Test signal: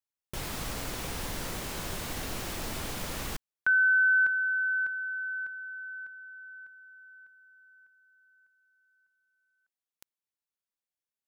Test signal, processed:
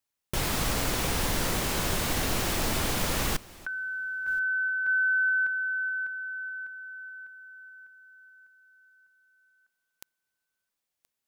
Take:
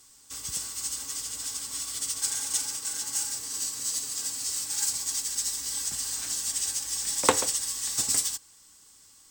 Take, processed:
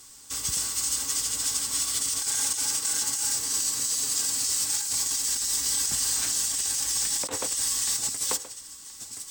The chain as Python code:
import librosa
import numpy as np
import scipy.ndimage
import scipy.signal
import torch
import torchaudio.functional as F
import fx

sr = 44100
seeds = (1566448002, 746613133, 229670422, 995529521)

y = x + 10.0 ** (-20.5 / 20.0) * np.pad(x, (int(1025 * sr / 1000.0), 0))[:len(x)]
y = fx.over_compress(y, sr, threshold_db=-32.0, ratio=-1.0)
y = y * 10.0 ** (5.0 / 20.0)